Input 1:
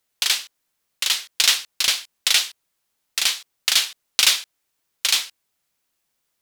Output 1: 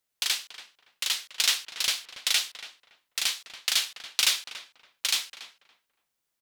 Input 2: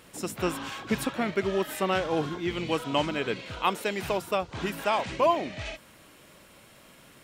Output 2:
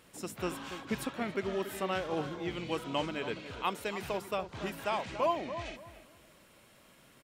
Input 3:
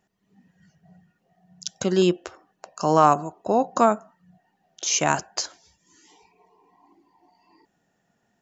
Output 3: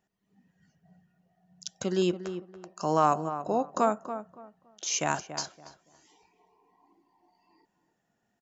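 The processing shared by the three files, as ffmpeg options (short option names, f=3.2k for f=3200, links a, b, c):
-filter_complex "[0:a]asplit=2[a][b];[b]adelay=283,lowpass=f=1.6k:p=1,volume=-10dB,asplit=2[c][d];[d]adelay=283,lowpass=f=1.6k:p=1,volume=0.25,asplit=2[e][f];[f]adelay=283,lowpass=f=1.6k:p=1,volume=0.25[g];[a][c][e][g]amix=inputs=4:normalize=0,volume=-7dB"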